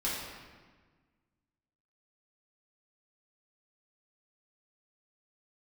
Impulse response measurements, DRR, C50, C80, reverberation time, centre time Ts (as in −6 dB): −8.5 dB, 0.0 dB, 2.0 dB, 1.4 s, 88 ms